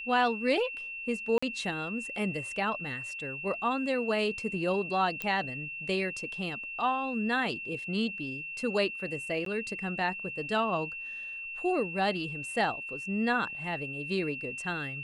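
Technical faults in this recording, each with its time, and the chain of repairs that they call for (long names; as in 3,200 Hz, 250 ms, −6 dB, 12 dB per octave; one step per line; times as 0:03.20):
whistle 2,700 Hz −37 dBFS
0:01.38–0:01.43: drop-out 45 ms
0:05.22: click −18 dBFS
0:09.45–0:09.46: drop-out 13 ms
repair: click removal
notch filter 2,700 Hz, Q 30
repair the gap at 0:01.38, 45 ms
repair the gap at 0:09.45, 13 ms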